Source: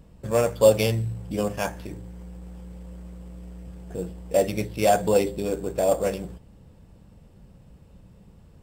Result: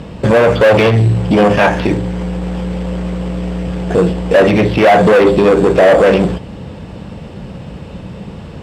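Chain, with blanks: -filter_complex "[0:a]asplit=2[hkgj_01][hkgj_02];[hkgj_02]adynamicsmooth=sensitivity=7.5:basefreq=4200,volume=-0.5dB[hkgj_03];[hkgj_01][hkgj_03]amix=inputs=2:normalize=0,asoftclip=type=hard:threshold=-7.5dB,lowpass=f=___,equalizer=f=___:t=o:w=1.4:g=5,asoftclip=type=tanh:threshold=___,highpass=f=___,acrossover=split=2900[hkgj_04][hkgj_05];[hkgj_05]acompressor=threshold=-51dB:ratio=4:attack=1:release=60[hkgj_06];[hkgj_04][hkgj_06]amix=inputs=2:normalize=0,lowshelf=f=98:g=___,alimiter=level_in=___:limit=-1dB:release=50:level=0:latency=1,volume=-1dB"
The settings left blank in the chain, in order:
7300, 3200, -22dB, 41, -11.5, 22dB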